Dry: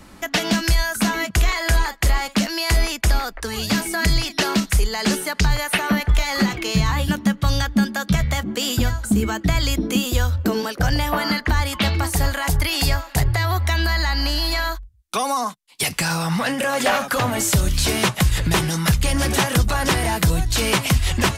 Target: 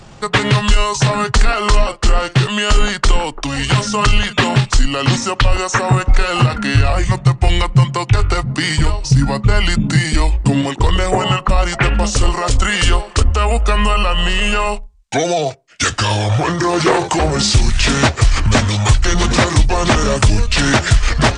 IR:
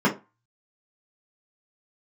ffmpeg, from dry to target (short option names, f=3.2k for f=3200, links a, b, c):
-filter_complex "[0:a]asetrate=27781,aresample=44100,atempo=1.5874,asplit=2[a][b];[1:a]atrim=start_sample=2205[c];[b][c]afir=irnorm=-1:irlink=0,volume=-36dB[d];[a][d]amix=inputs=2:normalize=0,volume=6.5dB"